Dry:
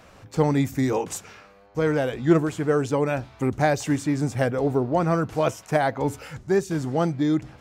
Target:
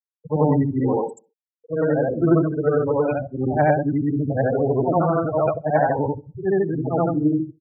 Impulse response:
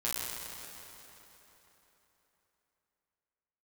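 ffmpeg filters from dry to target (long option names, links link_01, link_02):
-filter_complex "[0:a]afftfilt=real='re':imag='-im':win_size=8192:overlap=0.75,adynamicequalizer=threshold=0.0141:dfrequency=660:dqfactor=2.1:tfrequency=660:tqfactor=2.1:attack=5:release=100:ratio=0.375:range=1.5:mode=boostabove:tftype=bell,afftfilt=real='re*gte(hypot(re,im),0.0562)':imag='im*gte(hypot(re,im),0.0562)':win_size=1024:overlap=0.75,asplit=2[link_01][link_02];[link_02]adelay=66,lowpass=frequency=950:poles=1,volume=-23.5dB,asplit=2[link_03][link_04];[link_04]adelay=66,lowpass=frequency=950:poles=1,volume=0.53,asplit=2[link_05][link_06];[link_06]adelay=66,lowpass=frequency=950:poles=1,volume=0.53[link_07];[link_03][link_05][link_07]amix=inputs=3:normalize=0[link_08];[link_01][link_08]amix=inputs=2:normalize=0,volume=6.5dB"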